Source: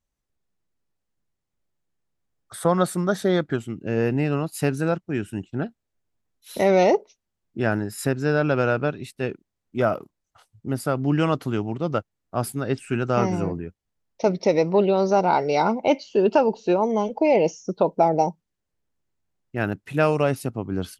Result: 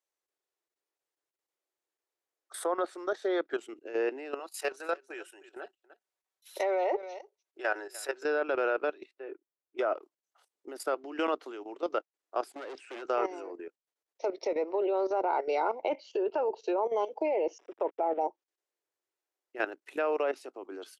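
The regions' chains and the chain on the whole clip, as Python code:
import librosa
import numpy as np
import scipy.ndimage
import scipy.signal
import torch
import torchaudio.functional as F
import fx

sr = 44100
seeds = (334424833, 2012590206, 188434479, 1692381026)

y = fx.chain(x, sr, fx.highpass(hz=530.0, slope=12),
    fx.comb(ms=5.3, depth=0.36),
    fx.echo_single(ms=299, db=-19.5), at=(4.39, 8.23))
y = fx.chain(y, sr, fx.lowpass(hz=1700.0, slope=12),
    fx.notch_comb(f0_hz=230.0), at=(9.04, 9.78))
y = fx.chain(y, sr, fx.leveller(passes=1),
    fx.air_absorb(metres=100.0),
    fx.clip_hard(threshold_db=-24.0), at=(12.51, 13.02))
y = fx.chain(y, sr, fx.delta_hold(step_db=-37.5),
    fx.savgol(points=25), at=(17.58, 18.21))
y = scipy.signal.sosfilt(scipy.signal.butter(8, 330.0, 'highpass', fs=sr, output='sos'), y)
y = fx.env_lowpass_down(y, sr, base_hz=2100.0, full_db=-16.0)
y = fx.level_steps(y, sr, step_db=13)
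y = y * librosa.db_to_amplitude(-2.0)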